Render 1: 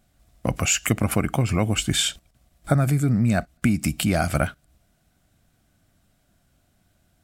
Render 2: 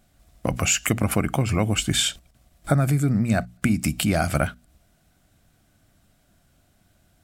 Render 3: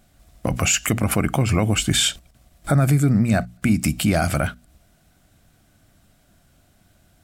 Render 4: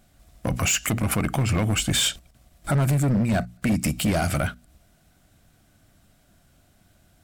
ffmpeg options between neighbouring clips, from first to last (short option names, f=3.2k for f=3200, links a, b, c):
-filter_complex "[0:a]bandreject=f=60:t=h:w=6,bandreject=f=120:t=h:w=6,bandreject=f=180:t=h:w=6,bandreject=f=240:t=h:w=6,asplit=2[a][b];[b]acompressor=threshold=-29dB:ratio=6,volume=-3dB[c];[a][c]amix=inputs=2:normalize=0,volume=-1.5dB"
-af "alimiter=limit=-12.5dB:level=0:latency=1:release=21,volume=4dB"
-af "asoftclip=type=hard:threshold=-16dB,volume=-1.5dB"